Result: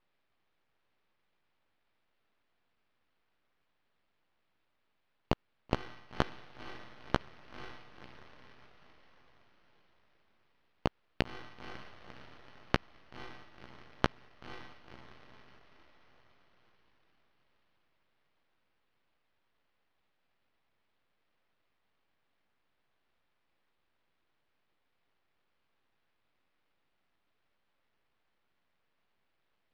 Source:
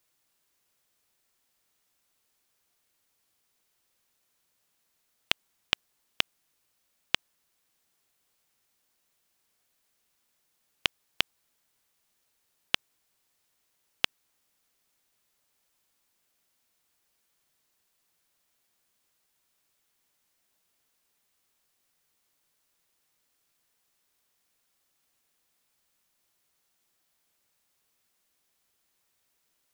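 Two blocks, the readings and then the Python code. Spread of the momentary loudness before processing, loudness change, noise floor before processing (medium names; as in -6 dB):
0 LU, -7.5 dB, -75 dBFS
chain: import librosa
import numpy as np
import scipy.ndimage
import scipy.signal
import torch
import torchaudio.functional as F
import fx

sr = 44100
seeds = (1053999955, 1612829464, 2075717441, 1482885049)

y = fx.rider(x, sr, range_db=10, speed_s=0.5)
y = fx.bass_treble(y, sr, bass_db=8, treble_db=-2)
y = fx.doubler(y, sr, ms=15.0, db=-6.5)
y = fx.echo_diffused(y, sr, ms=516, feedback_pct=57, wet_db=-10.5)
y = np.repeat(y[::6], 6)[:len(y)]
y = np.abs(y)
y = fx.air_absorb(y, sr, metres=180.0)
y = y * 10.0 ** (-1.5 / 20.0)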